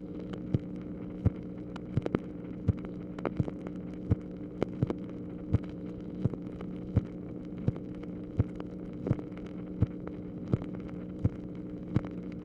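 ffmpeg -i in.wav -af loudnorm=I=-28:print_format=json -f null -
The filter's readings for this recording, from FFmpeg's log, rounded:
"input_i" : "-36.1",
"input_tp" : "-11.2",
"input_lra" : "1.1",
"input_thresh" : "-46.1",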